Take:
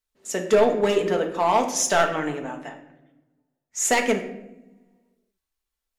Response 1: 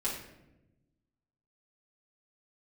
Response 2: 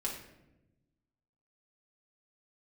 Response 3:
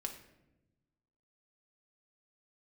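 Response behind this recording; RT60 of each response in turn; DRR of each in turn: 3; 0.95, 0.95, 0.95 seconds; −8.0, −3.5, 3.0 decibels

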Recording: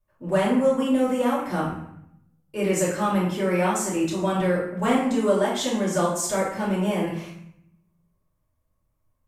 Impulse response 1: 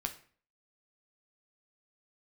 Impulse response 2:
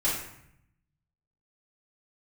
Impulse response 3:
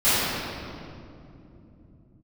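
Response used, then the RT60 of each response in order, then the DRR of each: 2; 0.45, 0.70, 2.8 seconds; 4.5, −9.0, −18.5 decibels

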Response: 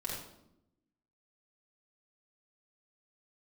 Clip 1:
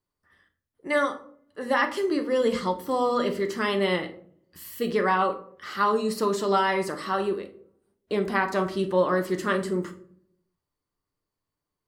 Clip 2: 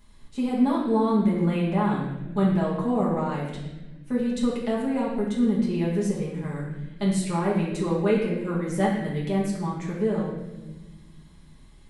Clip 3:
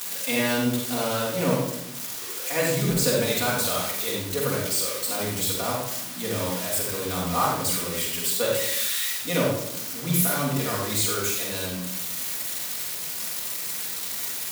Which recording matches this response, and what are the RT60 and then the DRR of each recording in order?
3; 0.60, 1.2, 0.85 seconds; 5.0, −6.0, −5.0 decibels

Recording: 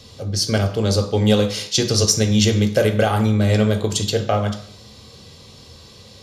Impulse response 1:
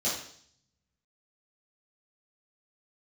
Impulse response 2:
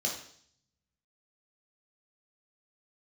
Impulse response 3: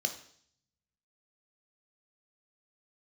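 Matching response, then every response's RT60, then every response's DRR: 3; 0.60, 0.60, 0.60 seconds; −10.5, −2.5, 4.5 decibels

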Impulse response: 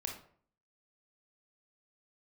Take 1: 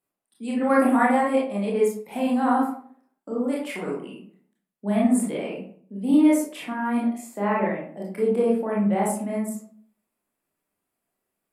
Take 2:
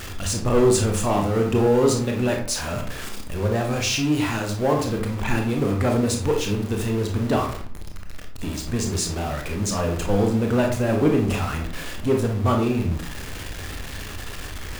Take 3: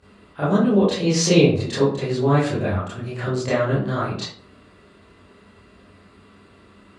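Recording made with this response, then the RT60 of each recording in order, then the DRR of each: 2; 0.55, 0.55, 0.55 seconds; −5.0, 1.5, −13.0 decibels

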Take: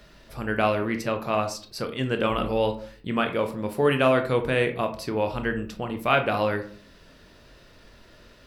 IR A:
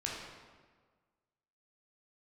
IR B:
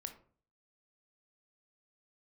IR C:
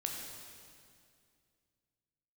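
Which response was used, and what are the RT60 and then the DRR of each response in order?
B; 1.5, 0.45, 2.3 seconds; −4.0, 6.0, 0.0 decibels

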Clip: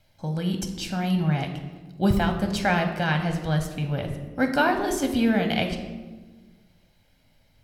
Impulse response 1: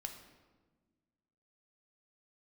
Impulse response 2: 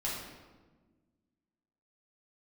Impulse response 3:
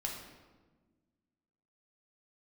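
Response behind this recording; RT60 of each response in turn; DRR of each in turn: 1; 1.4, 1.4, 1.4 seconds; 4.0, −7.0, −1.5 decibels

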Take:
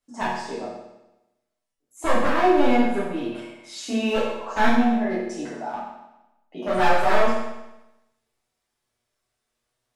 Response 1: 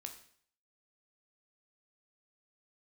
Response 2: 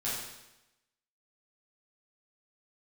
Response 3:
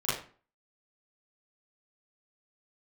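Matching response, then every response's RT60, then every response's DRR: 2; 0.55, 0.95, 0.40 seconds; 4.5, −9.0, −12.5 decibels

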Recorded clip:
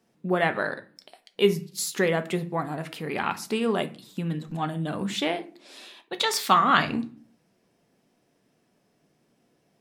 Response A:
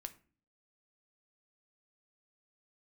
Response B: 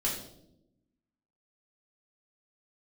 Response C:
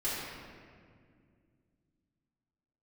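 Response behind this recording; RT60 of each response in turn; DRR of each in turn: A; 0.40, 0.85, 2.1 seconds; 8.5, −5.5, −10.5 decibels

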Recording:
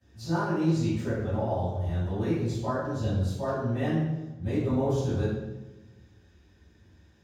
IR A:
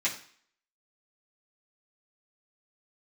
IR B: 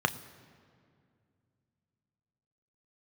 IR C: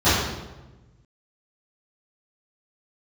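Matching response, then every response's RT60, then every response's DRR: C; 0.50, 2.3, 1.1 seconds; −9.0, 9.0, −18.0 decibels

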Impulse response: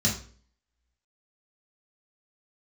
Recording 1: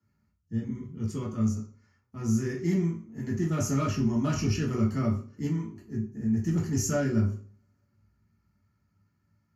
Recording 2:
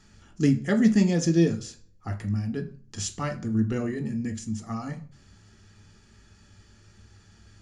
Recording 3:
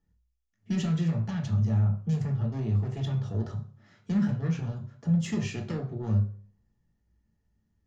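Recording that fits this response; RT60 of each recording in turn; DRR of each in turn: 1; 0.45, 0.45, 0.45 seconds; −5.0, 5.5, 0.5 decibels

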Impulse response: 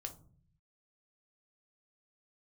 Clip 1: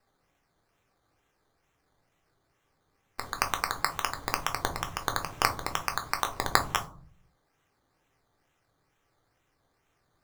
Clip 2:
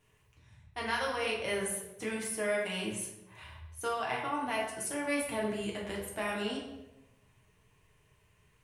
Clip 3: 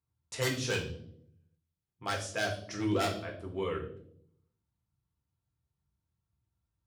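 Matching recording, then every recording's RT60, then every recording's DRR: 1; 0.50, 0.95, 0.70 seconds; 4.5, −3.5, 0.0 decibels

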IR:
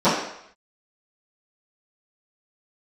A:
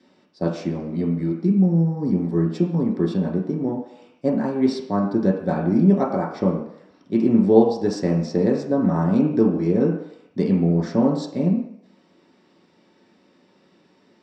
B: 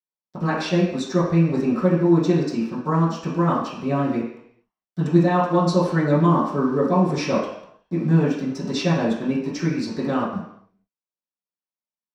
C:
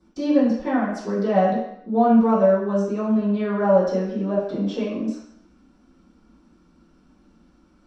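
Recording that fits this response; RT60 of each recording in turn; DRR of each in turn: C; 0.70, 0.70, 0.70 seconds; −2.5, −12.0, −18.0 decibels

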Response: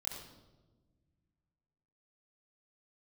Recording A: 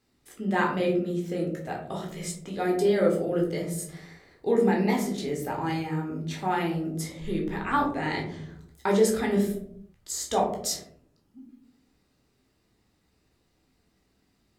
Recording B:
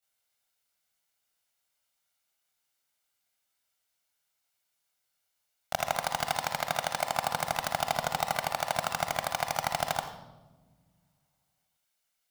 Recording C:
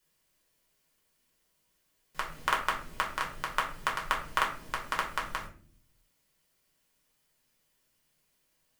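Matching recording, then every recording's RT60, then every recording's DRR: B; 0.75 s, 1.2 s, non-exponential decay; −1.5, −8.5, −3.0 decibels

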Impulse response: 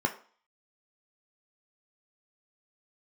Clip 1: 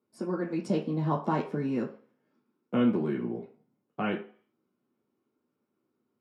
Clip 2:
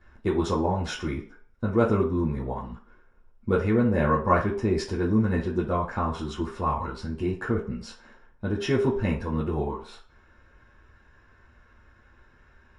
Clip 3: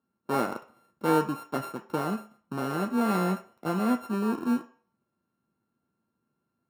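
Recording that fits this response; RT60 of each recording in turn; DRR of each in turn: 3; 0.45, 0.45, 0.45 seconds; −3.0, −8.0, 3.5 decibels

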